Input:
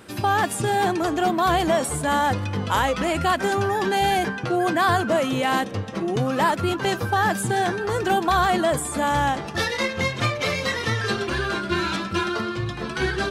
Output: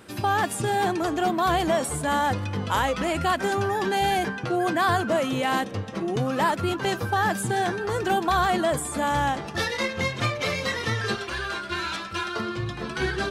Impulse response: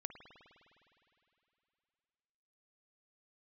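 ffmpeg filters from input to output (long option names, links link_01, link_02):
-filter_complex "[0:a]asettb=1/sr,asplit=3[link_01][link_02][link_03];[link_01]atrim=end=11.154[link_04];[link_02]atrim=start=11.15:end=12.36,asetpts=PTS-STARTPTS,afade=type=in:duration=0.004:curve=qsin,afade=type=out:start_time=1.206:duration=0.004:curve=qsin,equalizer=frequency=200:width_type=o:width=2.4:gain=-11[link_05];[link_03]atrim=start=12.356[link_06];[link_04][link_05]acrossfade=duration=0.004:curve1=hsin:curve2=qsin[link_07];[link_07][link_06]acrossfade=duration=0.004:curve1=qsin:curve2=hsin,volume=-2.5dB"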